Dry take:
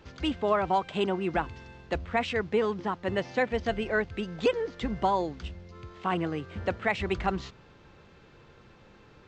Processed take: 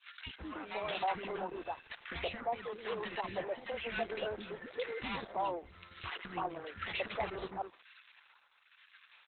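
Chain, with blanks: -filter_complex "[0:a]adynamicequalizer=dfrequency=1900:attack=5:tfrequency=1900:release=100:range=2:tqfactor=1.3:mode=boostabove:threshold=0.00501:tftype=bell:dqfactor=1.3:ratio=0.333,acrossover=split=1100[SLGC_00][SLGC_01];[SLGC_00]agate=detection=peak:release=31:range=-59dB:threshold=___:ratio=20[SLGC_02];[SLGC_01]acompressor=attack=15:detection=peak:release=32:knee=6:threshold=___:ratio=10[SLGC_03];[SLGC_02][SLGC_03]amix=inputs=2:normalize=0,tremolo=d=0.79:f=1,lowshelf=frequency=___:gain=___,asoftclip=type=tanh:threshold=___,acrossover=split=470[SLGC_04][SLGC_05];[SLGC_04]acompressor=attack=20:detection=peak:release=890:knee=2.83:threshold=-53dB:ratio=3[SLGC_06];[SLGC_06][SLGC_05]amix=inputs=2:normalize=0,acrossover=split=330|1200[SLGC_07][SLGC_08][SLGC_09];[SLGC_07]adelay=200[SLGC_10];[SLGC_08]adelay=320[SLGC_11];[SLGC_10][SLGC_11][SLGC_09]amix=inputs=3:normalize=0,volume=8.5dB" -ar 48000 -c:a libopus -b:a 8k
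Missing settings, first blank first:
-49dB, -44dB, 250, -11.5, -35dB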